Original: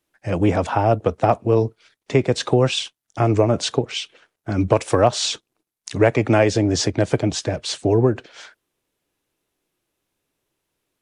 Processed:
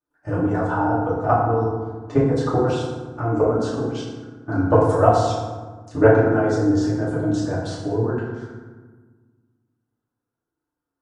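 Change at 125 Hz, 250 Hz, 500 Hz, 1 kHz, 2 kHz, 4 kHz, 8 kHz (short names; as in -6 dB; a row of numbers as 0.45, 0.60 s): -1.0, +0.5, -0.5, +1.5, -1.5, -13.5, -12.5 dB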